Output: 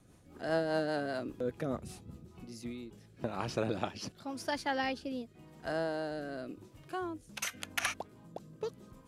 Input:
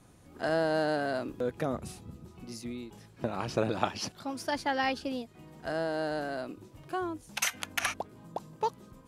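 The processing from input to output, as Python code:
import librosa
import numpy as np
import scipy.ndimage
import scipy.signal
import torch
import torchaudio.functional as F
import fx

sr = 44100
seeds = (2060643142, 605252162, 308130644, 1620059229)

y = fx.rotary_switch(x, sr, hz=5.0, then_hz=0.9, switch_at_s=2.09)
y = y * librosa.db_to_amplitude(-1.5)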